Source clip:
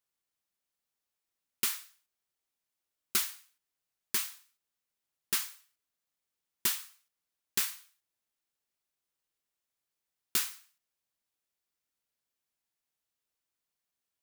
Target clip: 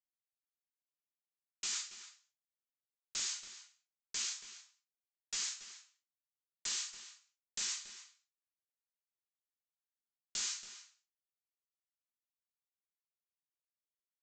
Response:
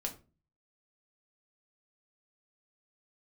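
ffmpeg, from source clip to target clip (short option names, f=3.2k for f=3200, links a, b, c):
-filter_complex "[0:a]aemphasis=mode=production:type=riaa,agate=range=-33dB:threshold=-39dB:ratio=3:detection=peak[a];[1:a]atrim=start_sample=2205,atrim=end_sample=4410[b];[a][b]afir=irnorm=-1:irlink=0,aresample=16000,aeval=exprs='clip(val(0),-1,0.075)':c=same,aresample=44100,highshelf=f=4.6k:g=3.5,areverse,acompressor=threshold=-37dB:ratio=10,areverse,asplit=2[c][d];[d]adelay=279.9,volume=-11dB,highshelf=f=4k:g=-6.3[e];[c][e]amix=inputs=2:normalize=0,volume=1dB"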